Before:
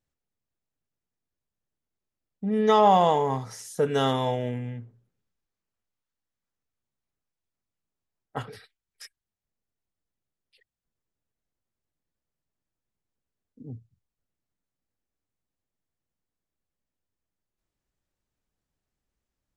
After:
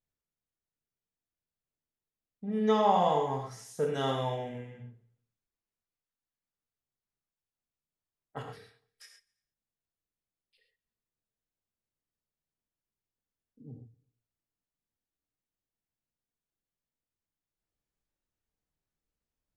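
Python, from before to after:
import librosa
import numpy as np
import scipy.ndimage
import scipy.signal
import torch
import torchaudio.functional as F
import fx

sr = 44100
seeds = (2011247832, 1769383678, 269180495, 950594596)

p1 = fx.high_shelf(x, sr, hz=9200.0, db=-3.5)
p2 = p1 + fx.echo_feedback(p1, sr, ms=86, feedback_pct=59, wet_db=-24.0, dry=0)
p3 = fx.rev_gated(p2, sr, seeds[0], gate_ms=150, shape='flat', drr_db=1.5)
y = F.gain(torch.from_numpy(p3), -8.5).numpy()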